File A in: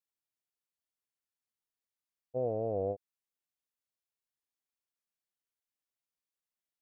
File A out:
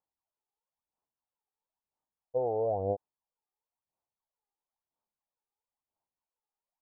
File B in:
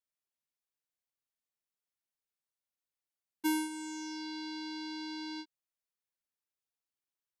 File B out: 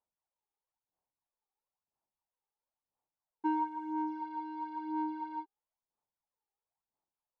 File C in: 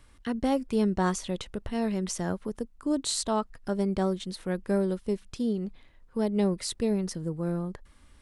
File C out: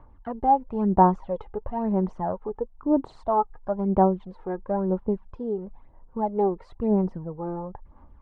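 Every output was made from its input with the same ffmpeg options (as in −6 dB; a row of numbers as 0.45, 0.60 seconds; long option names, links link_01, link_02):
-af "aphaser=in_gain=1:out_gain=1:delay=2.5:decay=0.6:speed=1:type=sinusoidal,lowpass=frequency=890:width_type=q:width=3.6,volume=-2dB"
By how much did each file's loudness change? +3.0, +1.0, +4.0 LU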